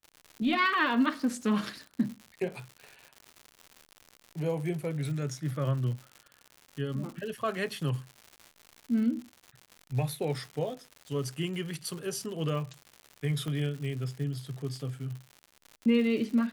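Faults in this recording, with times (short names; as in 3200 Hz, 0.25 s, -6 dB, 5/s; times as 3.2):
crackle 150/s -38 dBFS
13.48 pop -24 dBFS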